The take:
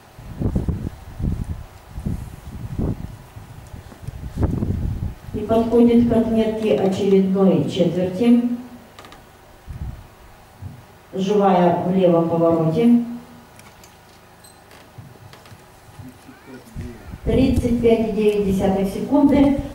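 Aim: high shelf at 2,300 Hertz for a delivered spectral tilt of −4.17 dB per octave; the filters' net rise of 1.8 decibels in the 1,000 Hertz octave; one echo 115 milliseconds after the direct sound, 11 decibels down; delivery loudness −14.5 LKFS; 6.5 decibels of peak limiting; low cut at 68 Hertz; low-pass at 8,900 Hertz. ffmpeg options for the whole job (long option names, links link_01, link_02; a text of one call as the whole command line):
ffmpeg -i in.wav -af "highpass=68,lowpass=8900,equalizer=frequency=1000:width_type=o:gain=4,highshelf=frequency=2300:gain=-8,alimiter=limit=-10dB:level=0:latency=1,aecho=1:1:115:0.282,volume=6dB" out.wav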